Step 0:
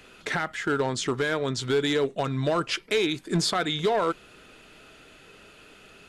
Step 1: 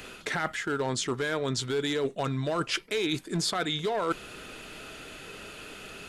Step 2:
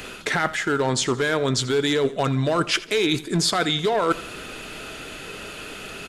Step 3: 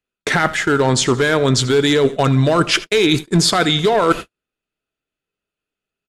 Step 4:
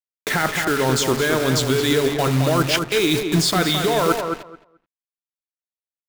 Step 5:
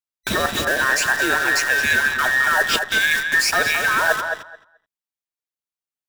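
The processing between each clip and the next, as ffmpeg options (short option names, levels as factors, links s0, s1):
-af "highshelf=f=8400:g=6,areverse,acompressor=threshold=0.02:ratio=6,areverse,volume=2.24"
-af "aecho=1:1:83|166|249|332:0.126|0.0554|0.0244|0.0107,volume=2.37"
-af "agate=range=0.00158:threshold=0.0398:ratio=16:detection=peak,lowshelf=f=210:g=4,volume=2"
-filter_complex "[0:a]bandreject=f=139.8:t=h:w=4,bandreject=f=279.6:t=h:w=4,bandreject=f=419.4:t=h:w=4,bandreject=f=559.2:t=h:w=4,bandreject=f=699:t=h:w=4,bandreject=f=838.8:t=h:w=4,bandreject=f=978.6:t=h:w=4,bandreject=f=1118.4:t=h:w=4,bandreject=f=1258.2:t=h:w=4,bandreject=f=1398:t=h:w=4,bandreject=f=1537.8:t=h:w=4,bandreject=f=1677.6:t=h:w=4,bandreject=f=1817.4:t=h:w=4,bandreject=f=1957.2:t=h:w=4,bandreject=f=2097:t=h:w=4,acrusher=bits=3:mix=0:aa=0.000001,asplit=2[s0][s1];[s1]adelay=216,lowpass=f=2700:p=1,volume=0.531,asplit=2[s2][s3];[s3]adelay=216,lowpass=f=2700:p=1,volume=0.16,asplit=2[s4][s5];[s5]adelay=216,lowpass=f=2700:p=1,volume=0.16[s6];[s2][s4][s6]amix=inputs=3:normalize=0[s7];[s0][s7]amix=inputs=2:normalize=0,volume=0.596"
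-af "afftfilt=real='real(if(between(b,1,1012),(2*floor((b-1)/92)+1)*92-b,b),0)':imag='imag(if(between(b,1,1012),(2*floor((b-1)/92)+1)*92-b,b),0)*if(between(b,1,1012),-1,1)':win_size=2048:overlap=0.75"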